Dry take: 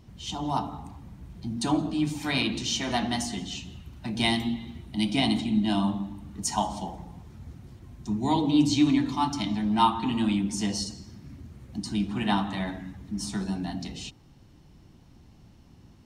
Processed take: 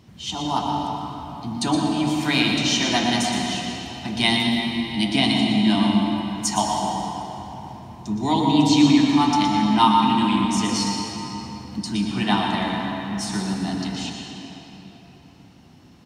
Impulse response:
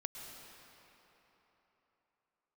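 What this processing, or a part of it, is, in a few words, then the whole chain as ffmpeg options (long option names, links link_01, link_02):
PA in a hall: -filter_complex "[0:a]highpass=100,equalizer=frequency=3000:width_type=o:width=2.8:gain=3.5,aecho=1:1:119:0.355[link_01];[1:a]atrim=start_sample=2205[link_02];[link_01][link_02]afir=irnorm=-1:irlink=0,volume=6.5dB"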